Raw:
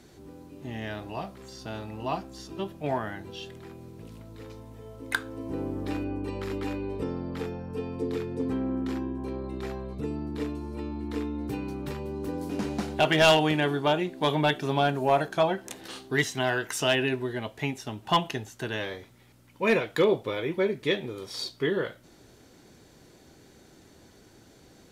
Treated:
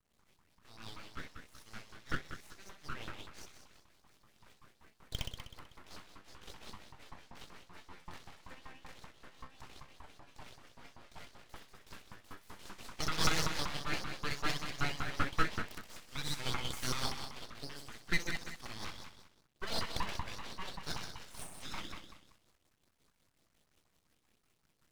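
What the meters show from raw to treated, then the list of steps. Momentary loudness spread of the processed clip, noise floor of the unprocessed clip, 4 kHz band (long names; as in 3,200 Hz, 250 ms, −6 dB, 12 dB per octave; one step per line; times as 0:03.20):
20 LU, −56 dBFS, −8.0 dB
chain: flutter between parallel walls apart 10.8 metres, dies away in 1.3 s
dead-zone distortion −50.5 dBFS
auto-filter high-pass saw up 5.2 Hz 550–2,400 Hz
rotating-speaker cabinet horn 5.5 Hz
full-wave rectification
level −8.5 dB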